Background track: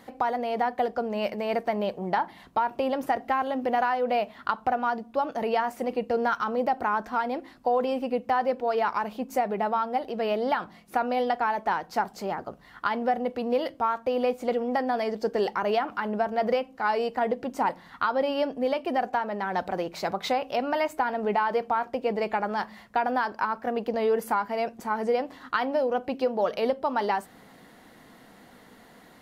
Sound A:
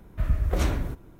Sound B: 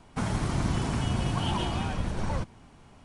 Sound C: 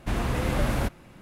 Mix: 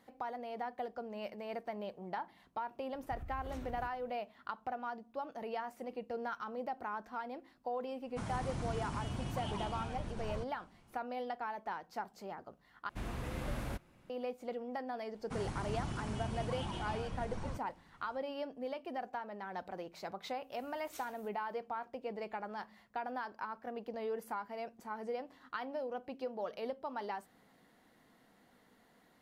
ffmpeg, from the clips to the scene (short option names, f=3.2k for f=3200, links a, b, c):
-filter_complex "[1:a]asplit=2[a][b];[2:a]asplit=2[c][d];[0:a]volume=-14.5dB[e];[a]acompressor=threshold=-28dB:ratio=6:attack=3.2:release=140:knee=1:detection=peak[f];[b]aderivative[g];[e]asplit=2[h][i];[h]atrim=end=12.894[j];[3:a]atrim=end=1.21,asetpts=PTS-STARTPTS,volume=-14dB[k];[i]atrim=start=14.096[l];[f]atrim=end=1.19,asetpts=PTS-STARTPTS,volume=-14dB,afade=t=in:d=0.004:c=hsin,afade=t=out:st=1.186:d=0.004:c=hsin,adelay=2930[m];[c]atrim=end=3.04,asetpts=PTS-STARTPTS,volume=-12dB,afade=t=in:d=0.1,afade=t=out:st=2.94:d=0.1,adelay=8000[n];[d]atrim=end=3.04,asetpts=PTS-STARTPTS,volume=-12dB,afade=t=in:d=0.004:c=hsin,afade=t=out:st=3.036:d=0.004:c=hsin,adelay=15140[o];[g]atrim=end=1.19,asetpts=PTS-STARTPTS,volume=-12dB,afade=t=in:d=0.004:c=hsin,afade=t=out:st=1.186:d=0.004:c=hsin,adelay=20340[p];[j][k]acrossfade=d=0.004:c1=hsin:c2=hsin[q];[q][l]acrossfade=d=0.004:c1=hsin:c2=hsin[r];[r][m][n][o][p]amix=inputs=5:normalize=0"